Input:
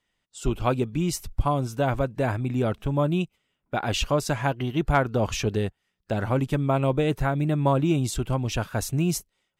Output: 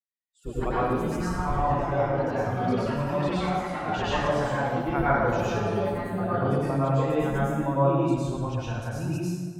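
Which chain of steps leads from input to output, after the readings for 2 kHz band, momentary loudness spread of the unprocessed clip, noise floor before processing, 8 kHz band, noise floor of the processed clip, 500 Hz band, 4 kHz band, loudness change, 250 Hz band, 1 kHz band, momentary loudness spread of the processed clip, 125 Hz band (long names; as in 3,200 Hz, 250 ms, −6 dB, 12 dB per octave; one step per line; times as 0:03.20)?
+0.5 dB, 7 LU, −78 dBFS, −10.5 dB, −44 dBFS, +0.5 dB, −6.0 dB, −0.5 dB, −1.0 dB, +2.5 dB, 7 LU, −2.5 dB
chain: spectral dynamics exaggerated over time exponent 1.5
low-pass filter 1,300 Hz 6 dB per octave
delay with pitch and tempo change per echo 99 ms, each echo +4 semitones, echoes 3, each echo −6 dB
low-shelf EQ 440 Hz −8 dB
dense smooth reverb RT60 1.6 s, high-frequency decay 0.65×, pre-delay 85 ms, DRR −9.5 dB
level −4 dB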